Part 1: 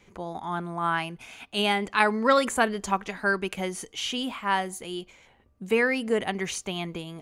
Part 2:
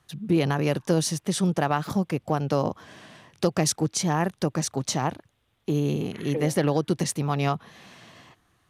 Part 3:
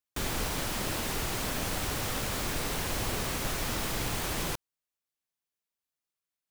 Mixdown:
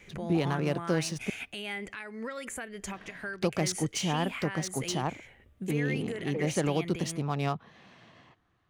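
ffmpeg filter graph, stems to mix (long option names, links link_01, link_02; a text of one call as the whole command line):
ffmpeg -i stem1.wav -i stem2.wav -filter_complex "[0:a]equalizer=frequency=250:width_type=o:width=1:gain=-4,equalizer=frequency=1000:width_type=o:width=1:gain=-11,equalizer=frequency=2000:width_type=o:width=1:gain=7,equalizer=frequency=4000:width_type=o:width=1:gain=-6,acompressor=threshold=-36dB:ratio=5,volume=-1dB[link_01];[1:a]adynamicsmooth=sensitivity=7.5:basefreq=4100,volume=-5.5dB,asplit=3[link_02][link_03][link_04];[link_02]atrim=end=1.3,asetpts=PTS-STARTPTS,afade=type=out:start_time=1.296:duration=0.004:curve=hsin[link_05];[link_03]atrim=start=1.3:end=2.93,asetpts=PTS-STARTPTS,volume=0[link_06];[link_04]atrim=start=2.93,asetpts=PTS-STARTPTS,afade=type=in:duration=0.004:curve=hsin[link_07];[link_05][link_06][link_07]concat=n=3:v=0:a=1[link_08];[link_01]acontrast=31,alimiter=level_in=3.5dB:limit=-24dB:level=0:latency=1:release=293,volume=-3.5dB,volume=0dB[link_09];[link_08][link_09]amix=inputs=2:normalize=0" out.wav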